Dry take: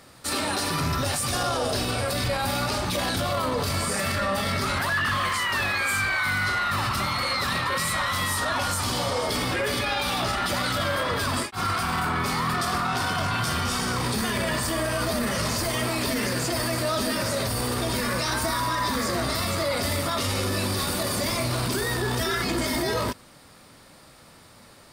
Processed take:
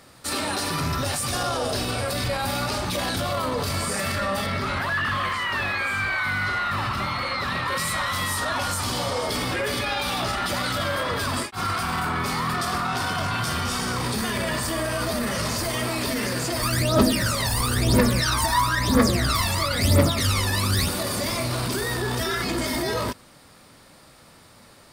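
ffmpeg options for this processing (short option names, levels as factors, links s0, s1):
-filter_complex "[0:a]asettb=1/sr,asplit=3[s0][s1][s2];[s0]atrim=end=4.464[s3];[s1]atrim=start=4.46:end=7.68,asetpts=PTS-STARTPTS,afade=t=in:d=0.004:c=qsin,afade=t=out:st=3.216:d=0.004:c=qsin,acrossover=split=4000[s4][s5];[s5]acompressor=threshold=0.00562:ratio=4:attack=1:release=60[s6];[s4][s6]amix=inputs=2:normalize=0[s7];[s2]atrim=start=7.676[s8];[s3][s7]acrossfade=d=0.004:c1=hsin:c2=qsin[s9];[s9][s8]acrossfade=d=0.004:c1=qsin:c2=hsin,asplit=3[s10][s11][s12];[s10]afade=t=out:st=16.61:d=0.02[s13];[s11]aphaser=in_gain=1:out_gain=1:delay=1.2:decay=0.77:speed=1:type=triangular,afade=t=in:st=16.61:d=0.02,afade=t=out:st=20.87:d=0.02[s14];[s12]afade=t=in:st=20.87:d=0.02[s15];[s13][s14][s15]amix=inputs=3:normalize=0"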